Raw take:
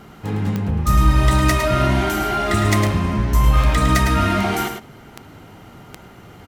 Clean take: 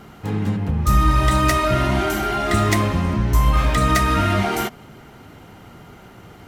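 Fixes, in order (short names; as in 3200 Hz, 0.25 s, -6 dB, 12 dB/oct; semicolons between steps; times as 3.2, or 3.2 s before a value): de-click; inverse comb 0.107 s -7 dB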